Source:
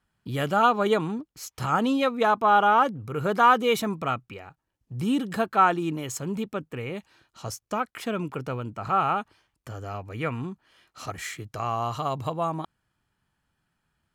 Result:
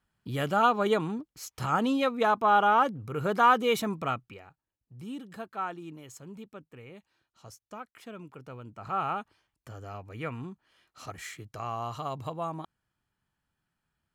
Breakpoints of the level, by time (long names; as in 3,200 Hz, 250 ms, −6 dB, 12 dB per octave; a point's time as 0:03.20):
0:04.09 −3 dB
0:05.00 −14.5 dB
0:08.37 −14.5 dB
0:09.03 −6.5 dB